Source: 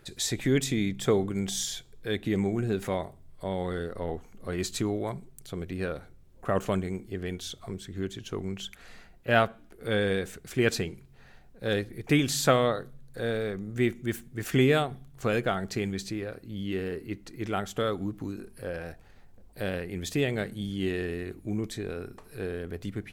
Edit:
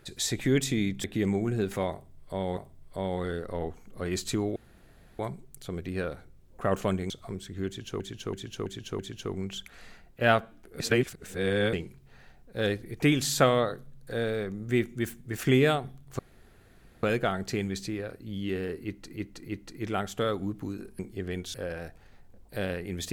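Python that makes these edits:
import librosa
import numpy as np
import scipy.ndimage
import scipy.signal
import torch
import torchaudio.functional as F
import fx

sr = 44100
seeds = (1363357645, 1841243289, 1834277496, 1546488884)

y = fx.edit(x, sr, fx.cut(start_s=1.04, length_s=1.11),
    fx.repeat(start_s=3.04, length_s=0.64, count=2),
    fx.insert_room_tone(at_s=5.03, length_s=0.63),
    fx.move(start_s=6.94, length_s=0.55, to_s=18.58),
    fx.repeat(start_s=8.06, length_s=0.33, count=5),
    fx.reverse_span(start_s=9.87, length_s=0.93),
    fx.insert_room_tone(at_s=15.26, length_s=0.84),
    fx.repeat(start_s=17.07, length_s=0.32, count=3), tone=tone)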